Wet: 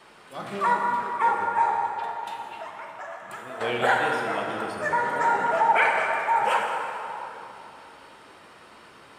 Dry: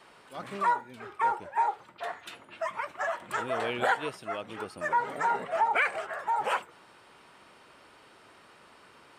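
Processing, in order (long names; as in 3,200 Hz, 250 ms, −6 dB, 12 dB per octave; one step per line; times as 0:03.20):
0:00.76–0:01.20: high-pass filter 190 Hz
0:01.88–0:03.61: downward compressor 3 to 1, threshold −45 dBFS, peak gain reduction 13.5 dB
dense smooth reverb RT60 3.1 s, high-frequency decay 0.65×, DRR −0.5 dB
level +3 dB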